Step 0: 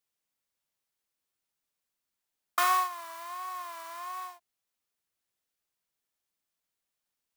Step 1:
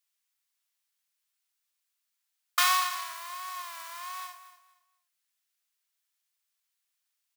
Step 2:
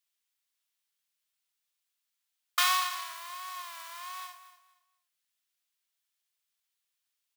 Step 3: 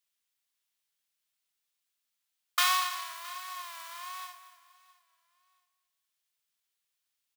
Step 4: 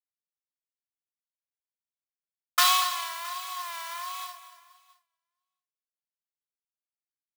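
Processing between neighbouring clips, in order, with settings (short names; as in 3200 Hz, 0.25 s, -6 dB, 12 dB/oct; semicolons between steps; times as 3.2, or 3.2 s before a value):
feedback echo 0.235 s, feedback 25%, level -12.5 dB; dynamic EQ 4100 Hz, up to +6 dB, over -48 dBFS, Q 0.86; Bessel high-pass 1600 Hz, order 2; gain +4.5 dB
bell 3300 Hz +3 dB 0.73 oct; gain -2.5 dB
feedback echo 0.666 s, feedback 32%, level -21.5 dB
comb 3 ms, depth 97%; expander -56 dBFS; gain +2.5 dB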